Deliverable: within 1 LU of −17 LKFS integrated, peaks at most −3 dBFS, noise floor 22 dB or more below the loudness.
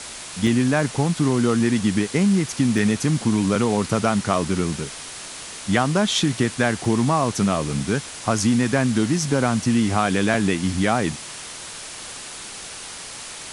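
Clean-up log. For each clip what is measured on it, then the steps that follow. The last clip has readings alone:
number of dropouts 3; longest dropout 1.8 ms; background noise floor −36 dBFS; target noise floor −43 dBFS; integrated loudness −21.0 LKFS; sample peak −4.0 dBFS; target loudness −17.0 LKFS
→ repair the gap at 0:00.47/0:02.78/0:06.85, 1.8 ms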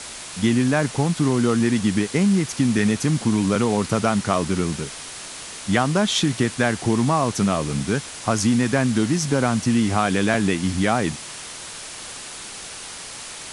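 number of dropouts 0; background noise floor −36 dBFS; target noise floor −43 dBFS
→ noise reduction from a noise print 7 dB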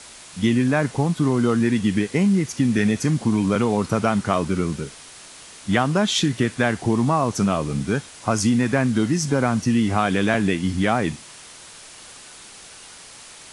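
background noise floor −43 dBFS; integrated loudness −21.0 LKFS; sample peak −4.0 dBFS; target loudness −17.0 LKFS
→ level +4 dB
brickwall limiter −3 dBFS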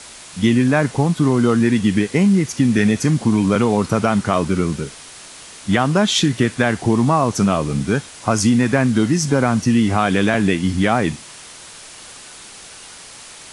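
integrated loudness −17.0 LKFS; sample peak −3.0 dBFS; background noise floor −39 dBFS

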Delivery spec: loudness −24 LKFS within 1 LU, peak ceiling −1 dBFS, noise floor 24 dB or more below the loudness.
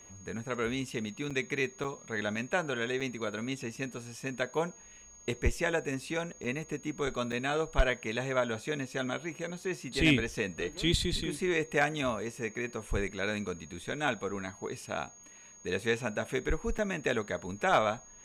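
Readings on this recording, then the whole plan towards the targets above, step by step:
number of dropouts 6; longest dropout 6.0 ms; interfering tone 6,600 Hz; level of the tone −52 dBFS; integrated loudness −33.0 LKFS; sample peak −15.0 dBFS; target loudness −24.0 LKFS
→ repair the gap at 0:01.30/0:01.84/0:03.00/0:06.44/0:07.32/0:16.78, 6 ms
notch filter 6,600 Hz, Q 30
level +9 dB

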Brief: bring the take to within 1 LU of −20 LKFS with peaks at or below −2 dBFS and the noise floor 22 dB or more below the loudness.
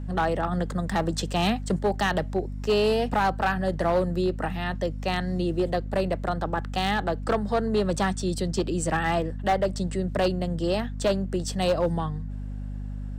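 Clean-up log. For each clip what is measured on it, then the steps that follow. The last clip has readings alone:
share of clipped samples 1.2%; peaks flattened at −17.0 dBFS; mains hum 50 Hz; hum harmonics up to 250 Hz; level of the hum −31 dBFS; integrated loudness −26.5 LKFS; sample peak −17.0 dBFS; target loudness −20.0 LKFS
→ clipped peaks rebuilt −17 dBFS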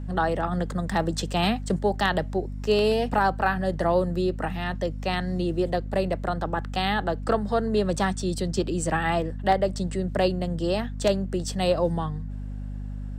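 share of clipped samples 0.0%; mains hum 50 Hz; hum harmonics up to 250 Hz; level of the hum −31 dBFS
→ hum removal 50 Hz, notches 5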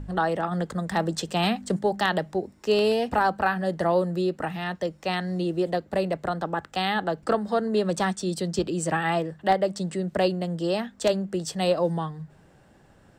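mains hum none found; integrated loudness −26.5 LKFS; sample peak −7.5 dBFS; target loudness −20.0 LKFS
→ level +6.5 dB
brickwall limiter −2 dBFS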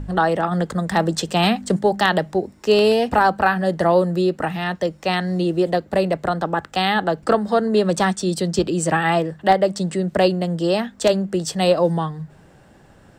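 integrated loudness −20.0 LKFS; sample peak −2.0 dBFS; background noise floor −50 dBFS

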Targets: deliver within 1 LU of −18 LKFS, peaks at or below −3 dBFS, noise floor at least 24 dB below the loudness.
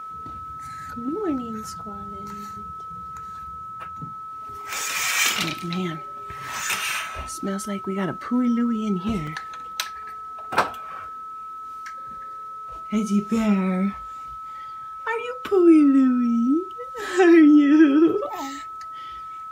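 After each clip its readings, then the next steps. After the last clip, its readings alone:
number of dropouts 1; longest dropout 4.1 ms; interfering tone 1,300 Hz; level of the tone −33 dBFS; integrated loudness −21.5 LKFS; sample peak −4.5 dBFS; target loudness −18.0 LKFS
→ repair the gap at 0:09.27, 4.1 ms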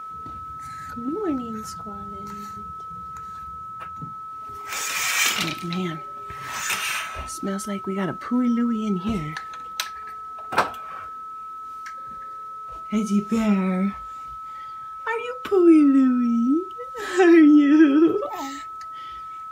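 number of dropouts 0; interfering tone 1,300 Hz; level of the tone −33 dBFS
→ notch filter 1,300 Hz, Q 30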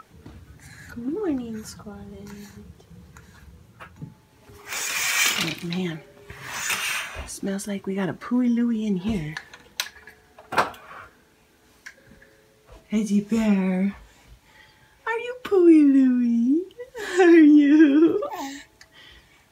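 interfering tone none found; integrated loudness −21.5 LKFS; sample peak −5.5 dBFS; target loudness −18.0 LKFS
→ level +3.5 dB
brickwall limiter −3 dBFS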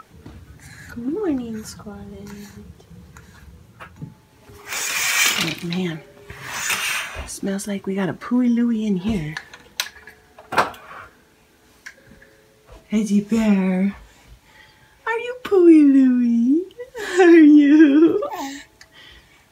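integrated loudness −18.0 LKFS; sample peak −3.0 dBFS; background noise floor −54 dBFS

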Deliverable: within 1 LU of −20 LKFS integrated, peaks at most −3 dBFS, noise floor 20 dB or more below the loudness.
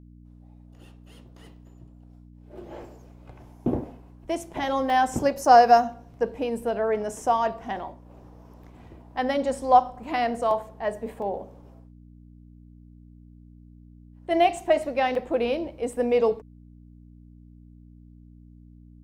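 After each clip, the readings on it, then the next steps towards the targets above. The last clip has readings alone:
number of dropouts 7; longest dropout 1.8 ms; mains hum 60 Hz; hum harmonics up to 300 Hz; level of the hum −47 dBFS; integrated loudness −24.5 LKFS; sample peak −4.0 dBFS; target loudness −20.0 LKFS
→ repair the gap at 0:04.90/0:05.45/0:10.51/0:11.22/0:14.57/0:15.15/0:15.93, 1.8 ms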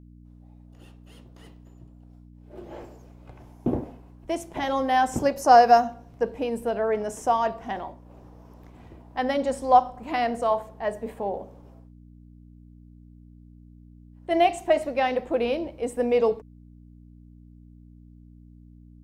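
number of dropouts 0; mains hum 60 Hz; hum harmonics up to 300 Hz; level of the hum −47 dBFS
→ hum removal 60 Hz, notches 5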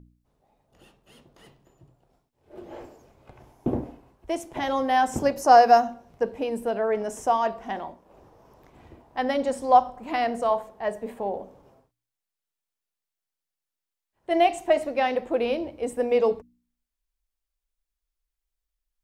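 mains hum none found; integrated loudness −24.5 LKFS; sample peak −4.0 dBFS; target loudness −20.0 LKFS
→ level +4.5 dB
brickwall limiter −3 dBFS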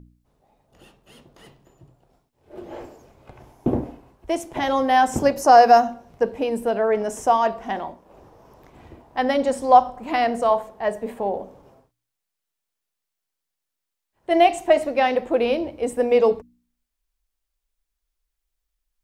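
integrated loudness −20.5 LKFS; sample peak −3.0 dBFS; background noise floor −83 dBFS

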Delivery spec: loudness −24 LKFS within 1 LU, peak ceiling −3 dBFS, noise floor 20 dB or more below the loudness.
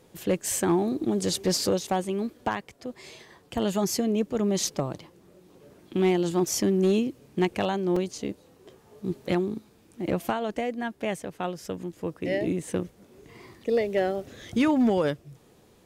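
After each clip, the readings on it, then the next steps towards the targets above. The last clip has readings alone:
share of clipped samples 0.3%; peaks flattened at −16.0 dBFS; number of dropouts 1; longest dropout 3.8 ms; integrated loudness −27.5 LKFS; sample peak −16.0 dBFS; target loudness −24.0 LKFS
→ clipped peaks rebuilt −16 dBFS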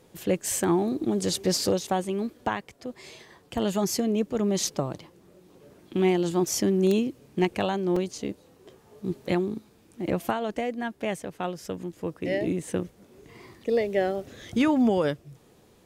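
share of clipped samples 0.0%; number of dropouts 1; longest dropout 3.8 ms
→ repair the gap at 0:07.96, 3.8 ms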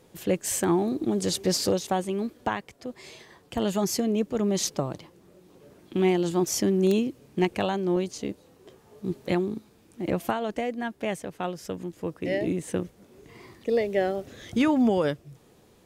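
number of dropouts 0; integrated loudness −27.5 LKFS; sample peak −8.5 dBFS; target loudness −24.0 LKFS
→ level +3.5 dB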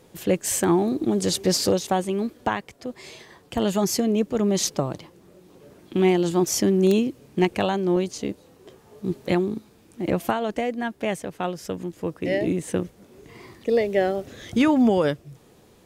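integrated loudness −24.0 LKFS; sample peak −5.0 dBFS; background noise floor −55 dBFS

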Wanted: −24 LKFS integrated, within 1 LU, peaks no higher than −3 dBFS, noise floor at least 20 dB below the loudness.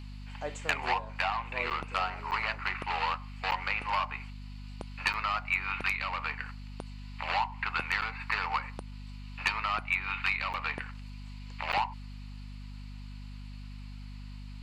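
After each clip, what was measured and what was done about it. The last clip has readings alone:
number of dropouts 7; longest dropout 8.6 ms; mains hum 50 Hz; hum harmonics up to 250 Hz; level of the hum −41 dBFS; integrated loudness −32.0 LKFS; sample peak −16.0 dBFS; target loudness −24.0 LKFS
→ repair the gap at 0:01.70/0:02.31/0:03.51/0:05.13/0:08.01/0:10.53/0:11.72, 8.6 ms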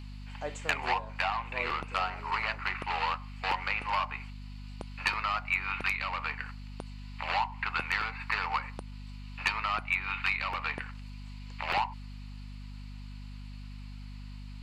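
number of dropouts 0; mains hum 50 Hz; hum harmonics up to 250 Hz; level of the hum −41 dBFS
→ hum removal 50 Hz, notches 5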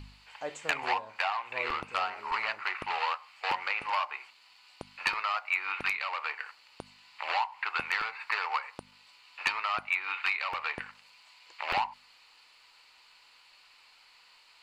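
mains hum none found; integrated loudness −32.0 LKFS; sample peak −16.5 dBFS; target loudness −24.0 LKFS
→ level +8 dB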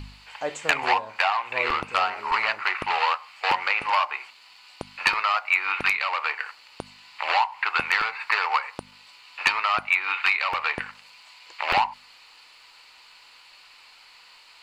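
integrated loudness −24.0 LKFS; sample peak −8.5 dBFS; background noise floor −52 dBFS

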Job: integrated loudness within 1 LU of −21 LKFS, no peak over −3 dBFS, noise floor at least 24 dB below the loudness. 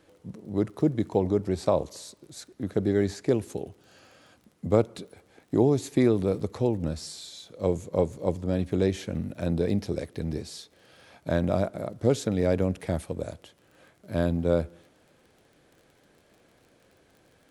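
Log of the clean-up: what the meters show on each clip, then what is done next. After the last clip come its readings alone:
crackle rate 35 per second; integrated loudness −27.5 LKFS; sample peak −8.0 dBFS; target loudness −21.0 LKFS
→ click removal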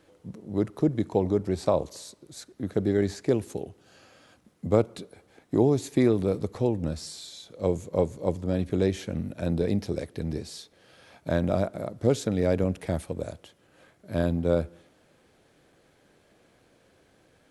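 crackle rate 0 per second; integrated loudness −27.5 LKFS; sample peak −8.0 dBFS; target loudness −21.0 LKFS
→ level +6.5 dB
brickwall limiter −3 dBFS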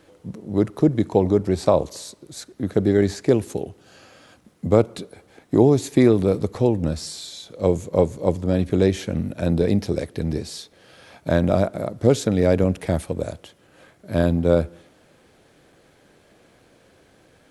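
integrated loudness −21.0 LKFS; sample peak −3.0 dBFS; background noise floor −57 dBFS

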